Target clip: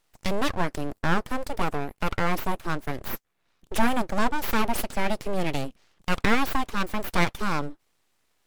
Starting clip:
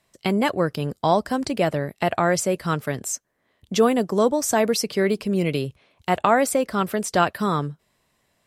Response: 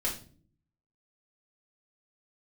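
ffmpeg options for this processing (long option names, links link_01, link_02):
-filter_complex "[0:a]asettb=1/sr,asplit=3[link_01][link_02][link_03];[link_01]atrim=end=0.784[link_04];[link_02]atrim=start=0.78:end=2.95,asetpts=PTS-STARTPTS,afade=type=in:duration=0.004:curve=qsin,afade=type=out:start_time=2.166:duration=0.004:curve=qsin,equalizer=frequency=3600:width_type=o:width=2:gain=-7.5[link_05];[link_03]atrim=start=2.946[link_06];[link_04][link_05]acrossfade=duration=0.004:curve1=hsin:curve2=qsin[link_07];[link_07][link_06]acrossfade=duration=0.004:curve1=qsin:curve2=hsin,aeval=exprs='abs(val(0))':channel_layout=same,volume=-1.5dB"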